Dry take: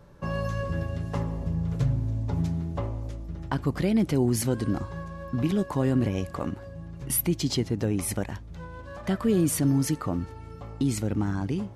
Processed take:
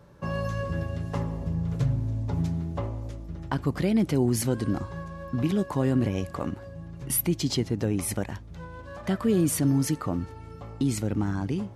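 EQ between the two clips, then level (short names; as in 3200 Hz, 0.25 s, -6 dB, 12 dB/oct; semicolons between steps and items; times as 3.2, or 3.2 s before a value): HPF 52 Hz; 0.0 dB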